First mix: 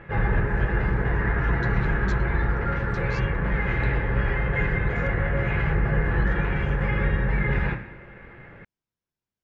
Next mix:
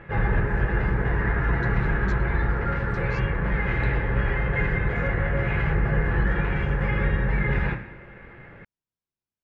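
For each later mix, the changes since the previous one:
speech -5.0 dB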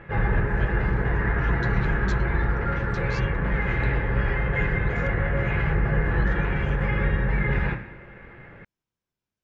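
speech +8.0 dB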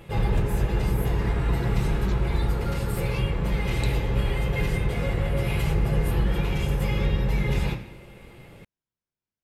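speech -6.0 dB; background: remove synth low-pass 1700 Hz, resonance Q 4.9

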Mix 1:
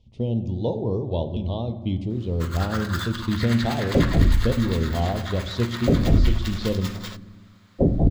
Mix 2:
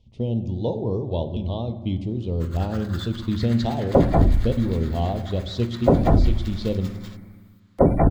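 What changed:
first sound -10.0 dB; second sound: remove Gaussian blur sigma 16 samples

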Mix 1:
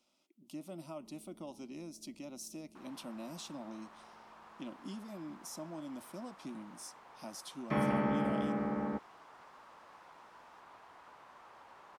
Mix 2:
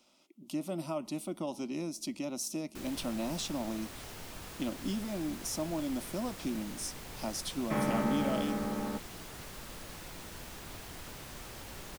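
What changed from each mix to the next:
speech +9.5 dB; first sound: remove band-pass 1000 Hz, Q 2.4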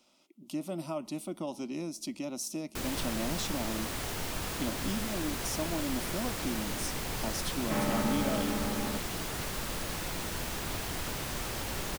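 first sound +10.0 dB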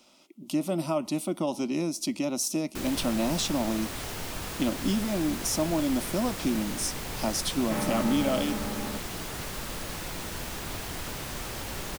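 speech +8.0 dB

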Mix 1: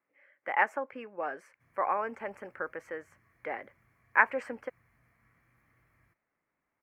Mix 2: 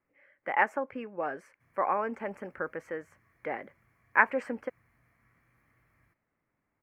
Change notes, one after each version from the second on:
speech: remove HPF 460 Hz 6 dB/oct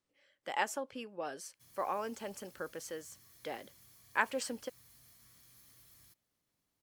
speech -6.0 dB; master: remove EQ curve 470 Hz 0 dB, 2200 Hz +4 dB, 3500 Hz -25 dB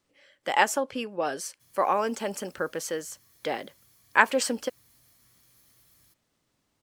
speech +11.5 dB

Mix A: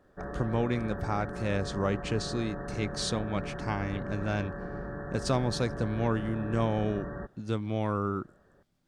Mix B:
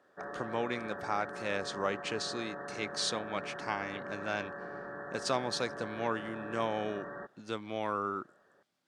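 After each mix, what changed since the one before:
master: add weighting filter A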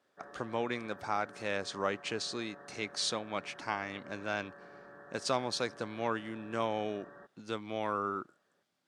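background -10.0 dB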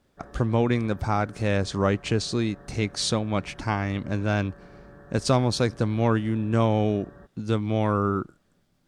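speech +6.5 dB; master: remove weighting filter A

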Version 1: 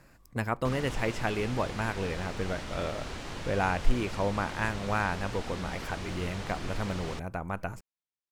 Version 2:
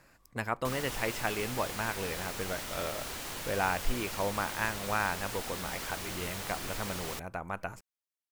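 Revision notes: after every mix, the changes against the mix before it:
background: remove air absorption 90 m; master: add low shelf 380 Hz -8 dB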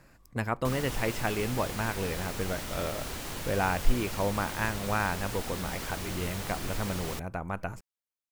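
master: add low shelf 380 Hz +8 dB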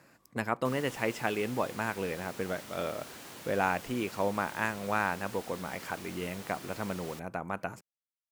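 background -8.0 dB; master: add HPF 170 Hz 12 dB/oct

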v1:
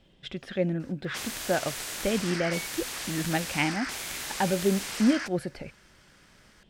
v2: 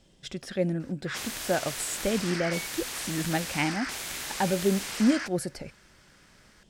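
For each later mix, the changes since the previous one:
speech: add resonant high shelf 4500 Hz +10.5 dB, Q 1.5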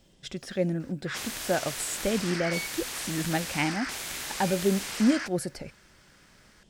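second sound: add tilt +3 dB/oct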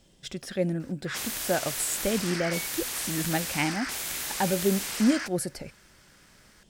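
second sound: add tilt -3 dB/oct; master: add high shelf 11000 Hz +11.5 dB

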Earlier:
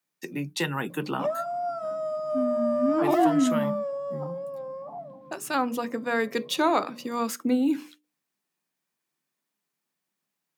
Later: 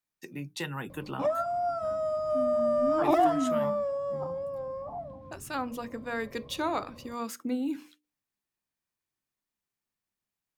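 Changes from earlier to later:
speech -8.0 dB; master: remove Chebyshev high-pass 150 Hz, order 4

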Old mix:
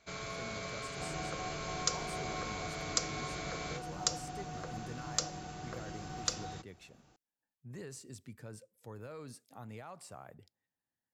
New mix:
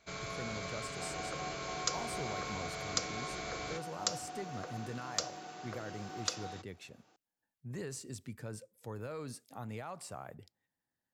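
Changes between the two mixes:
speech +4.5 dB; second sound: add BPF 310–6800 Hz

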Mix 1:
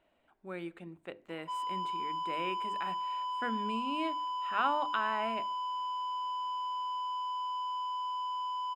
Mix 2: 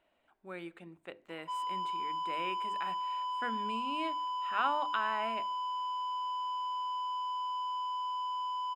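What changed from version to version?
speech: add low shelf 470 Hz -5.5 dB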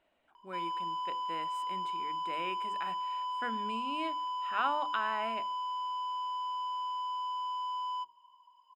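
background: entry -0.95 s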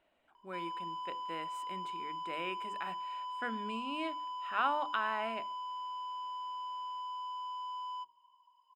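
background -5.0 dB

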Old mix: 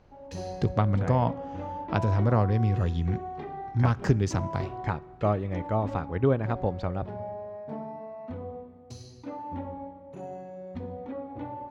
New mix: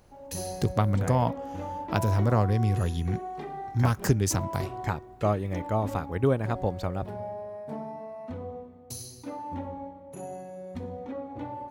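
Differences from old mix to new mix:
speech: send off; master: remove air absorption 160 m

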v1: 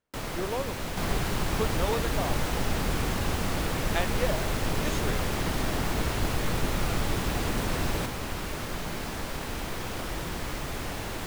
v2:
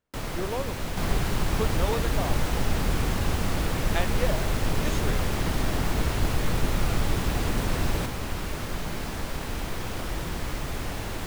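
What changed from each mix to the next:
master: add low shelf 140 Hz +5 dB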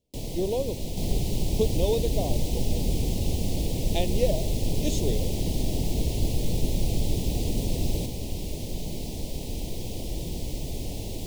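speech +6.5 dB; master: add Butterworth band-stop 1400 Hz, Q 0.52

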